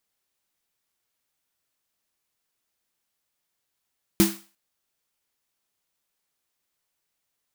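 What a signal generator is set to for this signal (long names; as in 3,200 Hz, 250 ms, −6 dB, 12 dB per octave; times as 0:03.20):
synth snare length 0.35 s, tones 200 Hz, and 330 Hz, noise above 630 Hz, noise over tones −6 dB, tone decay 0.28 s, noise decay 0.38 s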